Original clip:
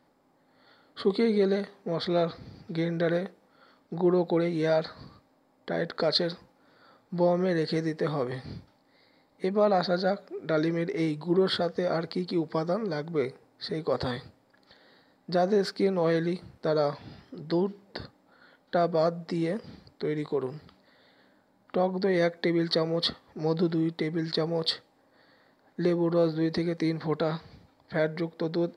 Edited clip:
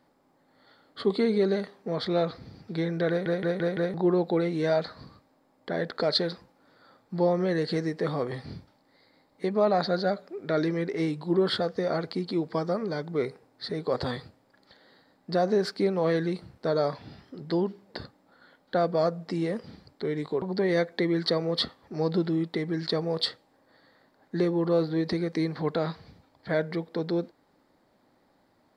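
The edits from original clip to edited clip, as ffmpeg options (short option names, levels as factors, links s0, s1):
-filter_complex "[0:a]asplit=7[s0][s1][s2][s3][s4][s5][s6];[s0]atrim=end=3.262[s7];[s1]atrim=start=3.088:end=3.262[s8];[s2]atrim=start=3.088:end=3.262[s9];[s3]atrim=start=3.088:end=3.262[s10];[s4]atrim=start=3.088:end=3.262[s11];[s5]atrim=start=3.938:end=20.422[s12];[s6]atrim=start=21.868[s13];[s7][s8]acrossfade=d=0.004:c1=hsin:c2=hsin[s14];[s14][s9]acrossfade=d=0.004:c1=hsin:c2=hsin[s15];[s15][s10]acrossfade=d=0.004:c1=hsin:c2=hsin[s16];[s16][s11]acrossfade=d=0.004:c1=hsin:c2=hsin[s17];[s17][s12]acrossfade=d=0.004:c1=hsin:c2=hsin[s18];[s18][s13]acrossfade=d=0.004:c1=hsin:c2=hsin"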